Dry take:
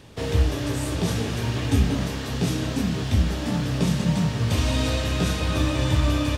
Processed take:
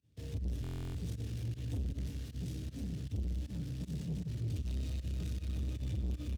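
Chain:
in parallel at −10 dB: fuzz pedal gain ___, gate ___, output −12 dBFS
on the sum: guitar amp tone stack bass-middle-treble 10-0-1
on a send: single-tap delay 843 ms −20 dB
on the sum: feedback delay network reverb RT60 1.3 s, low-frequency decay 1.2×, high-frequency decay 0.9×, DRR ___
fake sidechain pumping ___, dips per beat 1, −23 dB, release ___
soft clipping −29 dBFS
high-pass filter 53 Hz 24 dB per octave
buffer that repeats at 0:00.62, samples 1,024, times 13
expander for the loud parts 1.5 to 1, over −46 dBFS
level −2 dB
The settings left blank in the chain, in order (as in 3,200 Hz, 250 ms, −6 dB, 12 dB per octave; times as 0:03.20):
36 dB, −38 dBFS, 9.5 dB, 156 BPM, 71 ms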